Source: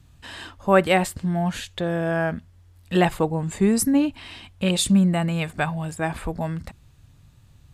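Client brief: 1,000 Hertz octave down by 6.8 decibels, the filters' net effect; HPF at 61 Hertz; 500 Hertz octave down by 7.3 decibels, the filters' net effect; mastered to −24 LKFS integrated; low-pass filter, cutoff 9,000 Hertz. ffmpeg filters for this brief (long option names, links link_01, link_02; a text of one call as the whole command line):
ffmpeg -i in.wav -af "highpass=61,lowpass=9000,equalizer=frequency=500:width_type=o:gain=-8,equalizer=frequency=1000:width_type=o:gain=-6,volume=1.5dB" out.wav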